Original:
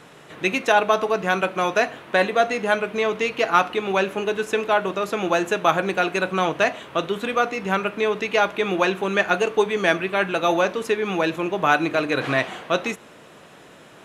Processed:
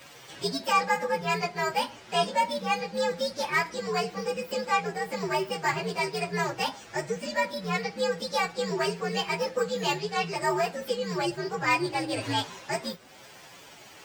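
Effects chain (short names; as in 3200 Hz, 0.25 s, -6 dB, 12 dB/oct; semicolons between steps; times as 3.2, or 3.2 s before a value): inharmonic rescaling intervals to 128%; mismatched tape noise reduction encoder only; gain -4 dB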